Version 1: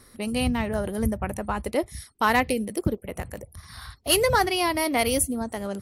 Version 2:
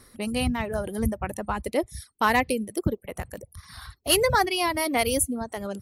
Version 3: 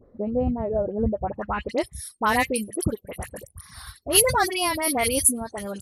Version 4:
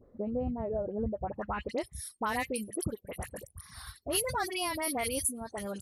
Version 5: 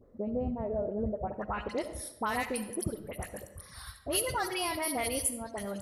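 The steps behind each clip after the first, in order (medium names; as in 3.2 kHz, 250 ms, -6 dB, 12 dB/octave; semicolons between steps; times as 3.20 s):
reverb removal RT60 0.73 s
low-pass sweep 570 Hz -> 11 kHz, 1.20–1.86 s; phase dispersion highs, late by 56 ms, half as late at 1.7 kHz
compression 2.5:1, threshold -26 dBFS, peak gain reduction 10 dB; trim -5 dB
algorithmic reverb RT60 0.99 s, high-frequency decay 0.6×, pre-delay 25 ms, DRR 9.5 dB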